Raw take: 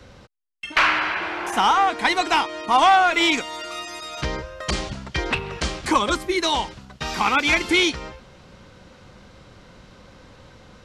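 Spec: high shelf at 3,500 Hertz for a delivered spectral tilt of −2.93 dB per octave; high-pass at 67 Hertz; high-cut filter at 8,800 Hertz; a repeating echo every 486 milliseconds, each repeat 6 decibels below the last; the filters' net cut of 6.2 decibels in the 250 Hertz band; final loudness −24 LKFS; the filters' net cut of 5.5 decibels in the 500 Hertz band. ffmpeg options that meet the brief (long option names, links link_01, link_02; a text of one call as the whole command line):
ffmpeg -i in.wav -af "highpass=67,lowpass=8800,equalizer=frequency=250:width_type=o:gain=-6,equalizer=frequency=500:width_type=o:gain=-6,highshelf=frequency=3500:gain=-7,aecho=1:1:486|972|1458|1944|2430|2916:0.501|0.251|0.125|0.0626|0.0313|0.0157,volume=-1dB" out.wav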